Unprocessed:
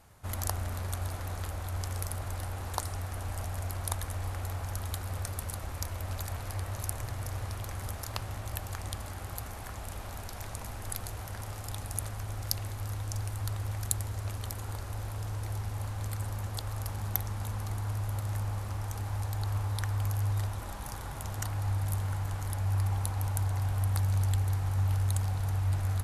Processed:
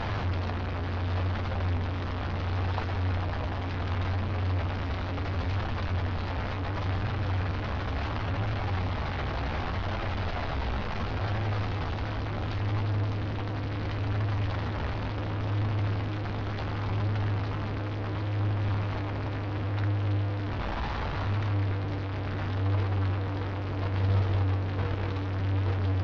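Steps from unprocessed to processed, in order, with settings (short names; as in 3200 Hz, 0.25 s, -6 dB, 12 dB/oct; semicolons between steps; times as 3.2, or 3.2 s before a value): delta modulation 32 kbps, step -23.5 dBFS; flange 0.7 Hz, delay 8.6 ms, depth 7.3 ms, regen +48%; crackle 290/s -41 dBFS; air absorption 340 m; gain +4.5 dB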